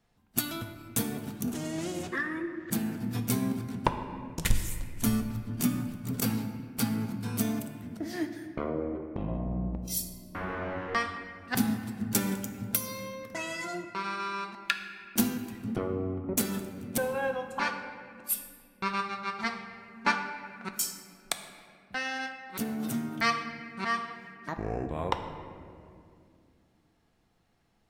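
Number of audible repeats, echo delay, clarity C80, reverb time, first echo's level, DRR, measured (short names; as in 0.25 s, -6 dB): none, none, 9.0 dB, 2.4 s, none, 6.0 dB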